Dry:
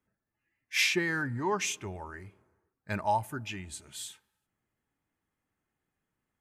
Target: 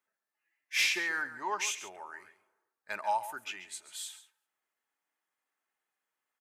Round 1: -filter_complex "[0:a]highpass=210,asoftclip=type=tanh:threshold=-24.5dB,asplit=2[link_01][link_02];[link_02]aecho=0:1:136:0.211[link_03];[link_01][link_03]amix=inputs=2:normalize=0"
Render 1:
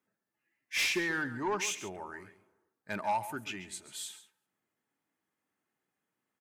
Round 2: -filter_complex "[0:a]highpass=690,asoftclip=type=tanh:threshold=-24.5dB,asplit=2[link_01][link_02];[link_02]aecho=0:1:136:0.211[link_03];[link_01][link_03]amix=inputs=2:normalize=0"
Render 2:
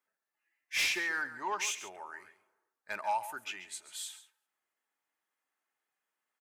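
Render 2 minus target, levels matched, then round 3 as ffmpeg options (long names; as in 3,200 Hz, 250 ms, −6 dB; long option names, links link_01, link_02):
soft clipping: distortion +8 dB
-filter_complex "[0:a]highpass=690,asoftclip=type=tanh:threshold=-18dB,asplit=2[link_01][link_02];[link_02]aecho=0:1:136:0.211[link_03];[link_01][link_03]amix=inputs=2:normalize=0"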